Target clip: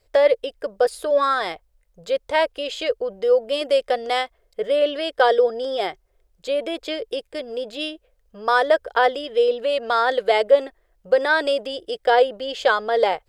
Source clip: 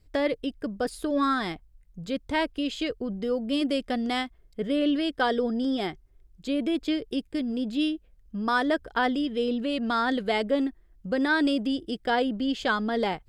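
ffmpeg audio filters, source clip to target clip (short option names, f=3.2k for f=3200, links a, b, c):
-af "lowshelf=f=360:t=q:w=3:g=-12,volume=5dB"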